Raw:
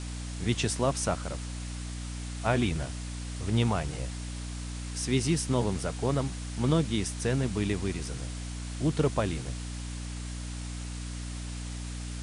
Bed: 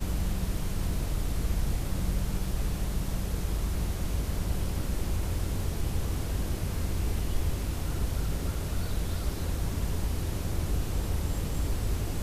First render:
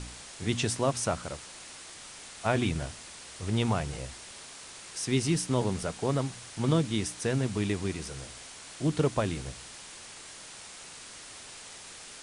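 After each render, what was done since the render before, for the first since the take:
hum removal 60 Hz, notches 5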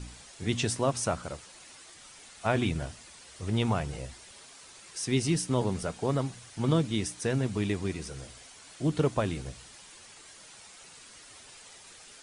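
broadband denoise 8 dB, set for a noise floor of −47 dBFS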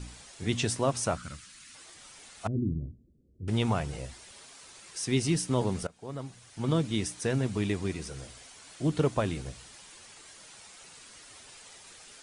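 0:01.17–0:01.75: flat-topped bell 580 Hz −16 dB
0:02.47–0:03.48: inverse Chebyshev low-pass filter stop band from 870 Hz, stop band 50 dB
0:05.87–0:06.95: fade in, from −22 dB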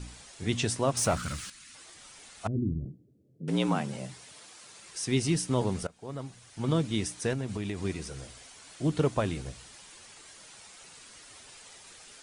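0:00.97–0:01.50: power curve on the samples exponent 0.7
0:02.85–0:04.81: frequency shifter +64 Hz
0:07.33–0:07.80: downward compressor, threshold −29 dBFS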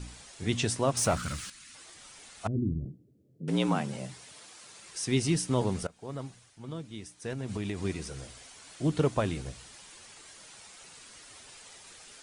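0:06.25–0:07.53: duck −12.5 dB, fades 0.34 s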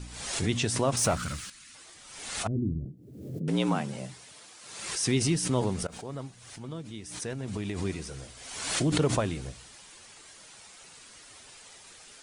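background raised ahead of every attack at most 51 dB per second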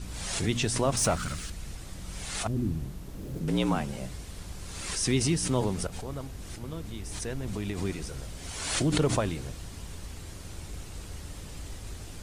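mix in bed −11.5 dB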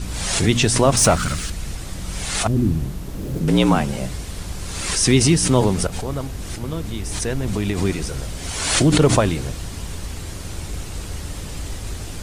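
level +11 dB
brickwall limiter −1 dBFS, peak gain reduction 2.5 dB

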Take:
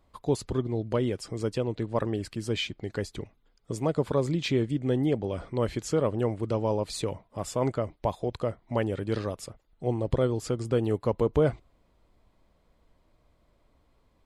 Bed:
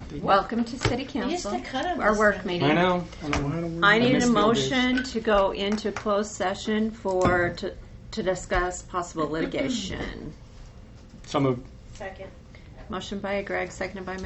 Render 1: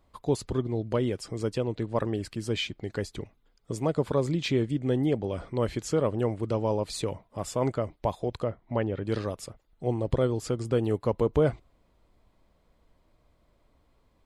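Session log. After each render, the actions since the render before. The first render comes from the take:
0:08.44–0:09.05: high-frequency loss of the air 220 metres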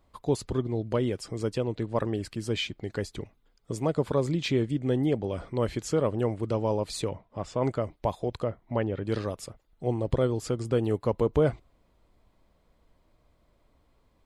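0:07.08–0:07.64: high-frequency loss of the air 120 metres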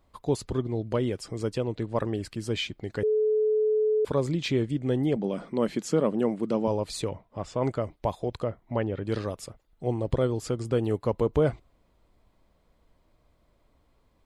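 0:03.03–0:04.05: beep over 430 Hz −20.5 dBFS
0:05.16–0:06.68: low shelf with overshoot 130 Hz −13.5 dB, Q 3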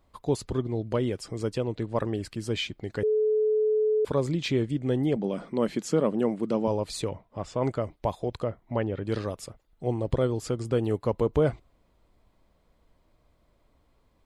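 no processing that can be heard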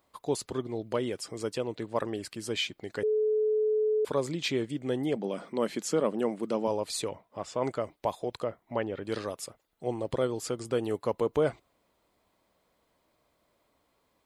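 high-pass filter 390 Hz 6 dB per octave
high-shelf EQ 8,400 Hz +7 dB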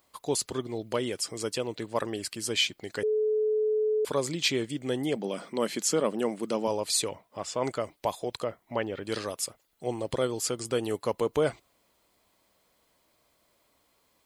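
high-shelf EQ 2,500 Hz +9.5 dB
notch filter 3,700 Hz, Q 30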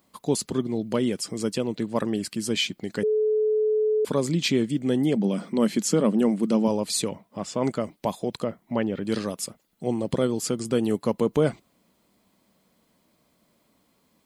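parametric band 200 Hz +15 dB 1.2 octaves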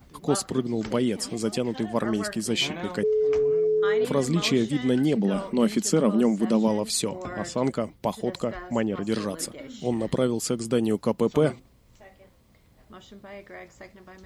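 mix in bed −14 dB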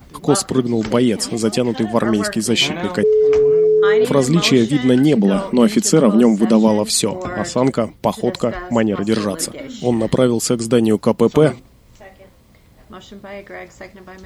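level +9.5 dB
brickwall limiter −1 dBFS, peak gain reduction 1.5 dB

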